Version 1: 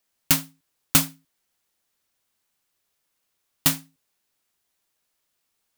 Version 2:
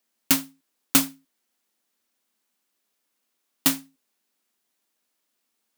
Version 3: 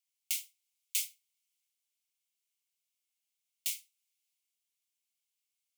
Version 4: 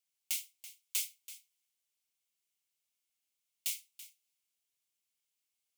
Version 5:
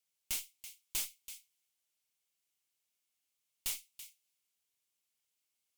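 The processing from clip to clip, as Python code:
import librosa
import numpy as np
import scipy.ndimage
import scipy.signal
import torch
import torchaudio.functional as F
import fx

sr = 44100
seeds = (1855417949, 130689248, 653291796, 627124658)

y1 = fx.low_shelf_res(x, sr, hz=170.0, db=-9.0, q=3.0)
y1 = F.gain(torch.from_numpy(y1), -1.0).numpy()
y2 = fx.transient(y1, sr, attack_db=-5, sustain_db=3)
y2 = scipy.signal.sosfilt(scipy.signal.cheby1(6, 3, 2100.0, 'highpass', fs=sr, output='sos'), y2)
y2 = F.gain(torch.from_numpy(y2), -7.5).numpy()
y3 = 10.0 ** (-23.5 / 20.0) * np.tanh(y2 / 10.0 ** (-23.5 / 20.0))
y3 = y3 + 10.0 ** (-15.5 / 20.0) * np.pad(y3, (int(332 * sr / 1000.0), 0))[:len(y3)]
y4 = fx.tube_stage(y3, sr, drive_db=34.0, bias=0.6)
y4 = F.gain(torch.from_numpy(y4), 4.0).numpy()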